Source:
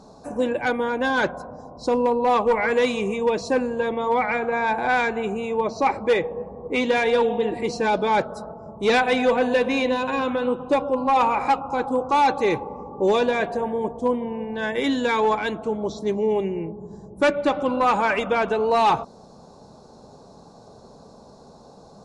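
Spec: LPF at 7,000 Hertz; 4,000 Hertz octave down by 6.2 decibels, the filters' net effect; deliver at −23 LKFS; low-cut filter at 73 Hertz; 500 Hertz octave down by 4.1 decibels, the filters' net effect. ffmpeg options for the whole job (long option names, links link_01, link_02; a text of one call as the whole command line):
ffmpeg -i in.wav -af "highpass=73,lowpass=7000,equalizer=frequency=500:width_type=o:gain=-4.5,equalizer=frequency=4000:width_type=o:gain=-7.5,volume=2dB" out.wav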